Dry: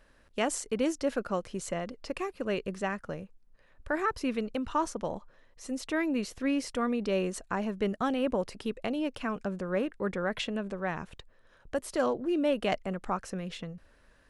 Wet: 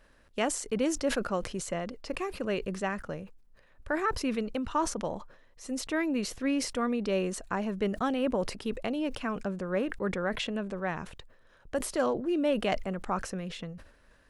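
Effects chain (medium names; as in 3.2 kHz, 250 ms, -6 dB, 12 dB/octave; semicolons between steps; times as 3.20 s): decay stretcher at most 96 dB/s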